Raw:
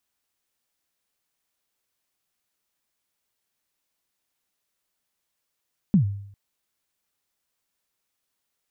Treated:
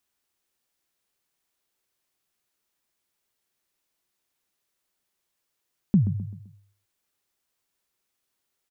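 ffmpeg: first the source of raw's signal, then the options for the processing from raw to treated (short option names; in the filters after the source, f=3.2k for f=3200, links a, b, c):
-f lavfi -i "aevalsrc='0.266*pow(10,-3*t/0.68)*sin(2*PI*(220*0.105/log(100/220)*(exp(log(100/220)*min(t,0.105)/0.105)-1)+100*max(t-0.105,0)))':d=0.4:s=44100"
-filter_complex "[0:a]equalizer=f=370:w=6.4:g=5,asplit=2[a][b];[b]adelay=129,lowpass=f=2k:p=1,volume=-11.5dB,asplit=2[c][d];[d]adelay=129,lowpass=f=2k:p=1,volume=0.4,asplit=2[e][f];[f]adelay=129,lowpass=f=2k:p=1,volume=0.4,asplit=2[g][h];[h]adelay=129,lowpass=f=2k:p=1,volume=0.4[i];[a][c][e][g][i]amix=inputs=5:normalize=0"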